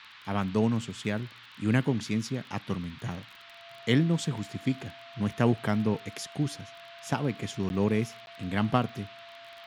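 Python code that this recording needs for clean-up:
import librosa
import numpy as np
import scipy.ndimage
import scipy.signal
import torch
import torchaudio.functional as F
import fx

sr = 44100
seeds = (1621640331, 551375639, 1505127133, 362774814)

y = fx.fix_declick_ar(x, sr, threshold=6.5)
y = fx.notch(y, sr, hz=680.0, q=30.0)
y = fx.fix_interpolate(y, sr, at_s=(7.69, 8.26), length_ms=11.0)
y = fx.noise_reduce(y, sr, print_start_s=3.24, print_end_s=3.74, reduce_db=23.0)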